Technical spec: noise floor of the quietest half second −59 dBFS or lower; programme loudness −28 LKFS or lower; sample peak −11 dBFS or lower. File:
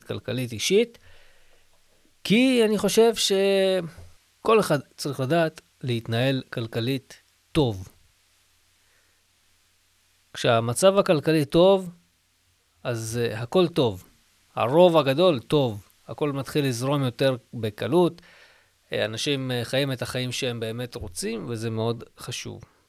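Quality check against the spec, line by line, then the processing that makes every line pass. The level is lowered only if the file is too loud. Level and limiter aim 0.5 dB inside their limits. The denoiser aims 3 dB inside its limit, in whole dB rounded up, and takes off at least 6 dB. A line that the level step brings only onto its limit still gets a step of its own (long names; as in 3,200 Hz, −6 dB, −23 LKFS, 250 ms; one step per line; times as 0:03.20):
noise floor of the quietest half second −66 dBFS: in spec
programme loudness −23.5 LKFS: out of spec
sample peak −5.5 dBFS: out of spec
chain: level −5 dB
brickwall limiter −11.5 dBFS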